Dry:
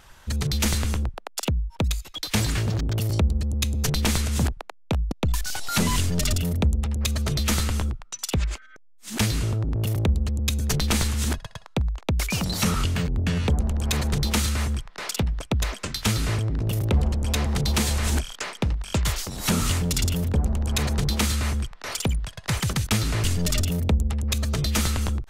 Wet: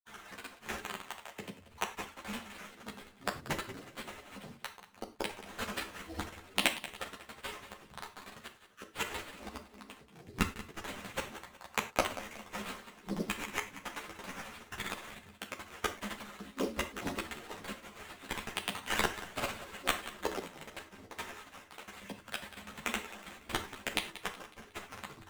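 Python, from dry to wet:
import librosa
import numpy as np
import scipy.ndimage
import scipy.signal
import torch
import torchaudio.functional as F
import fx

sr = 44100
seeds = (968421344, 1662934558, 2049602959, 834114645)

p1 = fx.hpss_only(x, sr, part='percussive')
p2 = fx.highpass(p1, sr, hz=120.0, slope=6)
p3 = fx.spec_gate(p2, sr, threshold_db=-30, keep='strong')
p4 = fx.low_shelf(p3, sr, hz=280.0, db=-7.5)
p5 = fx.level_steps(p4, sr, step_db=14)
p6 = p4 + F.gain(torch.from_numpy(p5), -2.0).numpy()
p7 = fx.mod_noise(p6, sr, seeds[0], snr_db=30)
p8 = fx.sample_hold(p7, sr, seeds[1], rate_hz=5100.0, jitter_pct=20)
p9 = fx.gate_flip(p8, sr, shuts_db=-25.0, range_db=-24)
p10 = fx.granulator(p9, sr, seeds[2], grain_ms=100.0, per_s=20.0, spray_ms=100.0, spread_st=3)
p11 = fx.echo_feedback(p10, sr, ms=184, feedback_pct=46, wet_db=-15)
p12 = fx.rev_gated(p11, sr, seeds[3], gate_ms=130, shape='falling', drr_db=6.0)
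p13 = fx.ensemble(p12, sr)
y = F.gain(torch.from_numpy(p13), 9.0).numpy()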